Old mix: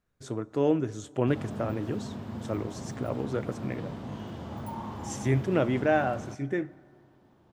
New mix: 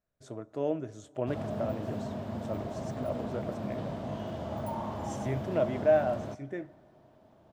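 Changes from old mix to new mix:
speech −9.0 dB
master: add parametric band 630 Hz +13 dB 0.32 octaves

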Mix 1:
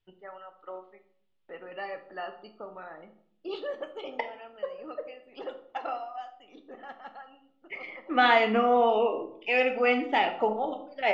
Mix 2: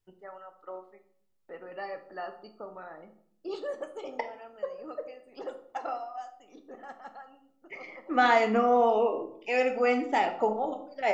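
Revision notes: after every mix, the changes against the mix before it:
master: remove low-pass with resonance 3,200 Hz, resonance Q 2.5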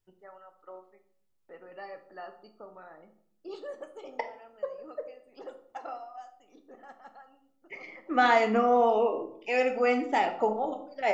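first voice −5.0 dB

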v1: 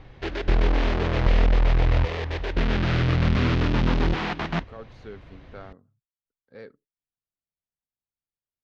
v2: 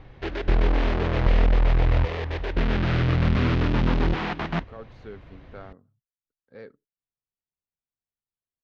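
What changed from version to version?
master: add high-shelf EQ 4,700 Hz −7.5 dB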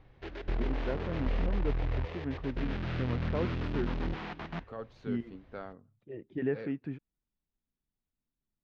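first voice: unmuted
background −12.0 dB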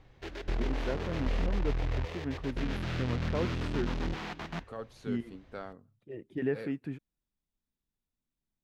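master: remove high-frequency loss of the air 180 metres

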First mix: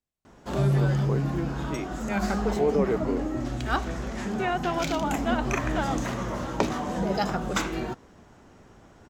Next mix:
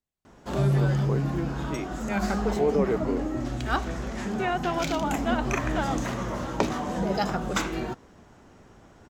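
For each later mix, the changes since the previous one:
nothing changed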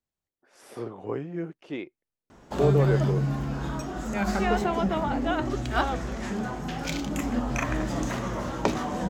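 background: entry +2.05 s

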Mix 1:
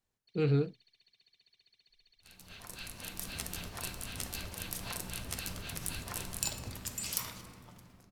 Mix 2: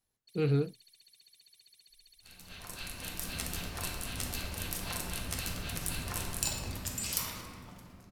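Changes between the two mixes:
first sound: remove Gaussian smoothing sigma 2 samples
second sound: send +8.0 dB

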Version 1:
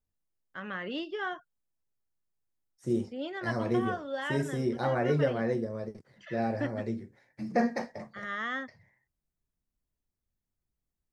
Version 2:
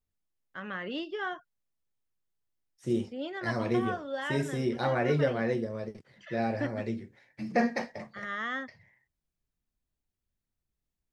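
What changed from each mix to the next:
second voice: add parametric band 2,900 Hz +9 dB 1.1 octaves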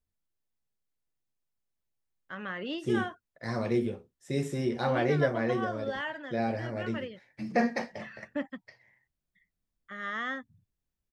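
first voice: entry +1.75 s

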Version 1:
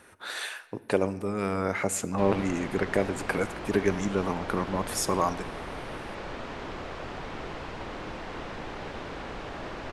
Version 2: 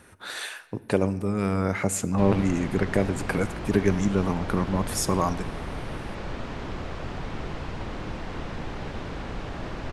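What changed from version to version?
master: add bass and treble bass +9 dB, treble +2 dB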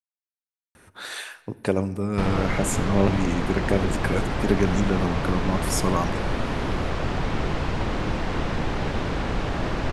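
speech: entry +0.75 s
background +8.0 dB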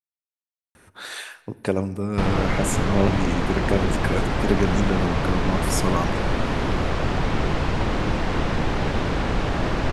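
background +3.0 dB

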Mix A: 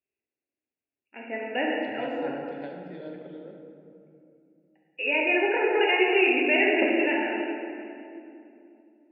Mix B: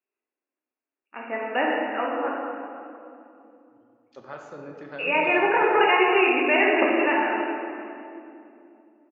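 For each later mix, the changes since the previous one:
second voice: entry +2.30 s
master: remove phaser with its sweep stopped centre 2,800 Hz, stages 4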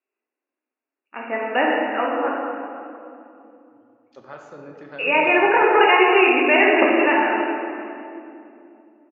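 first voice +4.5 dB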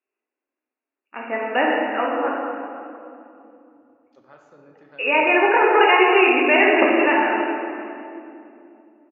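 second voice −10.0 dB

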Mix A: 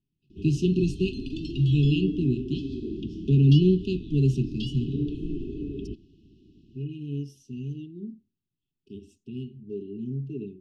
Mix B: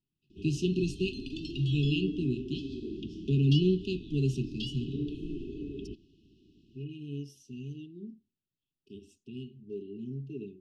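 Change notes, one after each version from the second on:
master: add low-shelf EQ 410 Hz −8 dB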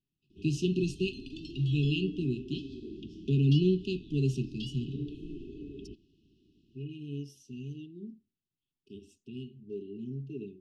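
background −4.5 dB

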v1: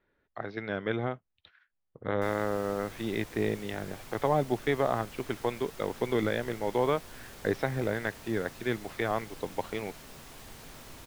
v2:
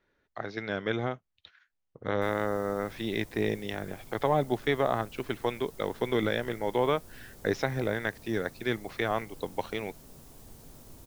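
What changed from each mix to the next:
speech: remove high-frequency loss of the air 200 metres
background: add parametric band 2,100 Hz −14 dB 2.8 octaves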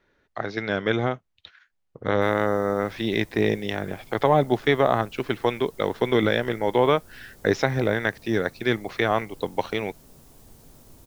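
speech +7.0 dB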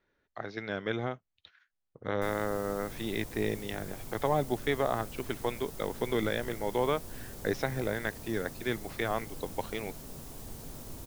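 speech −9.5 dB
background +6.5 dB

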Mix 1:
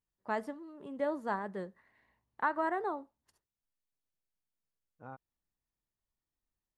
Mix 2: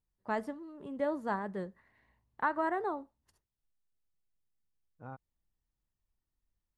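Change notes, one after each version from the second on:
master: add low-shelf EQ 130 Hz +10.5 dB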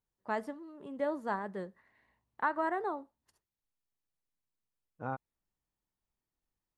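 second voice +10.5 dB
master: add low-shelf EQ 130 Hz −10.5 dB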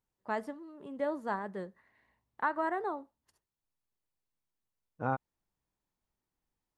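second voice +5.5 dB

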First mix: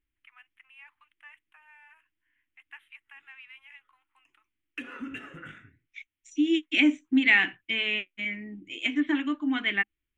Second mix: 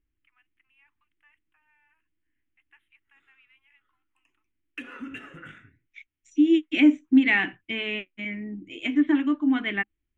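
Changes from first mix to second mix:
first voice −12.0 dB
second voice: add tilt shelving filter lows +6 dB, about 1,400 Hz

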